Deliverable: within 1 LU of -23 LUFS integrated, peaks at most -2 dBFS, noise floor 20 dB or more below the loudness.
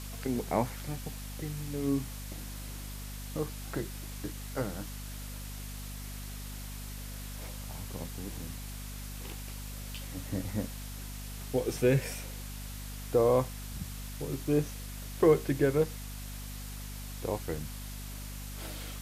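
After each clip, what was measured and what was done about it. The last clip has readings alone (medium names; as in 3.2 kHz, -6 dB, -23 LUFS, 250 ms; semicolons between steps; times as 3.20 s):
hum 50 Hz; highest harmonic 250 Hz; hum level -39 dBFS; noise floor -41 dBFS; noise floor target -55 dBFS; loudness -35.0 LUFS; peak level -12.5 dBFS; loudness target -23.0 LUFS
-> hum notches 50/100/150/200/250 Hz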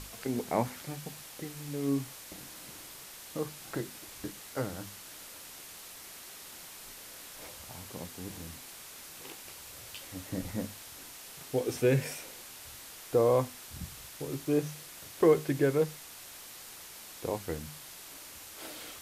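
hum not found; noise floor -48 dBFS; noise floor target -56 dBFS
-> noise reduction 8 dB, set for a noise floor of -48 dBFS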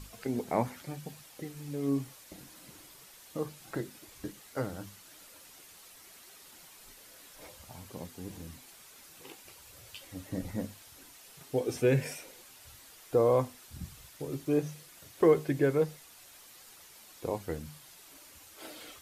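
noise floor -55 dBFS; loudness -33.0 LUFS; peak level -12.5 dBFS; loudness target -23.0 LUFS
-> trim +10 dB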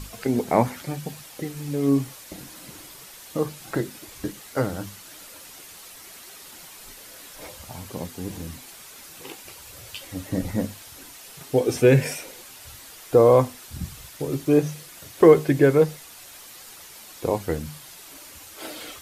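loudness -23.0 LUFS; peak level -2.5 dBFS; noise floor -45 dBFS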